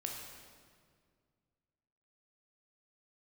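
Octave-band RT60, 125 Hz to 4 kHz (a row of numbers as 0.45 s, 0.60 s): 2.7 s, 2.5 s, 2.1 s, 1.8 s, 1.6 s, 1.5 s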